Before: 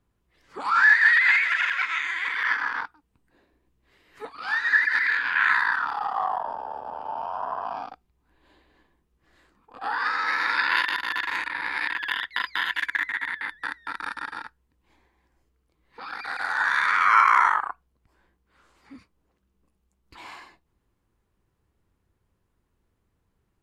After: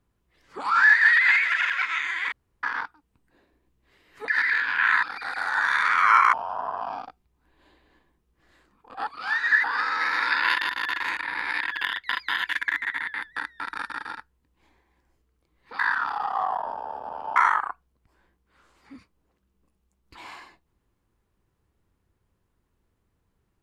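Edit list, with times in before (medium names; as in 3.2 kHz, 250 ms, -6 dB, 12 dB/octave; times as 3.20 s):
2.32–2.63 s: room tone
4.28–4.85 s: move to 9.91 s
5.60–7.17 s: swap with 16.06–17.36 s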